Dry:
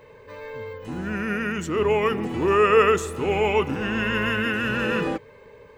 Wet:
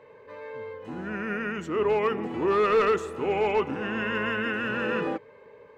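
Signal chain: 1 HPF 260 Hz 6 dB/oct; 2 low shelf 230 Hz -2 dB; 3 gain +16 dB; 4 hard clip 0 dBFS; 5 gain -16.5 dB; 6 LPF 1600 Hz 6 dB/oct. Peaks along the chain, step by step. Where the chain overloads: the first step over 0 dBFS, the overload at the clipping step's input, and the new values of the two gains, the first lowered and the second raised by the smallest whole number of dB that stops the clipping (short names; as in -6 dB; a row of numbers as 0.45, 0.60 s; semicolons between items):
-6.0, -6.0, +10.0, 0.0, -16.5, -16.5 dBFS; step 3, 10.0 dB; step 3 +6 dB, step 5 -6.5 dB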